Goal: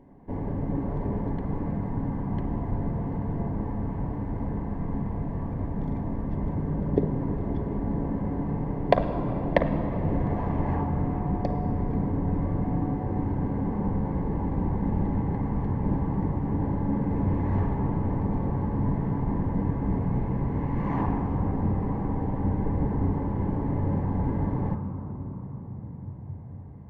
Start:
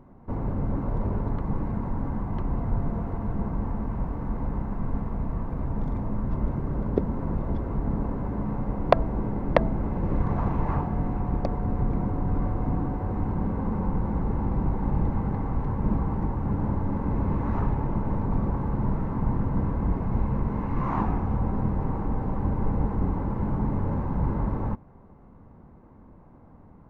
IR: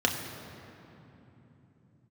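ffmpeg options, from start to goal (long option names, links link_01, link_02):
-filter_complex "[0:a]asplit=2[link_01][link_02];[link_02]highpass=frequency=91:width=0.5412,highpass=frequency=91:width=1.3066[link_03];[1:a]atrim=start_sample=2205,asetrate=25137,aresample=44100[link_04];[link_03][link_04]afir=irnorm=-1:irlink=0,volume=-13.5dB[link_05];[link_01][link_05]amix=inputs=2:normalize=0,volume=-5.5dB"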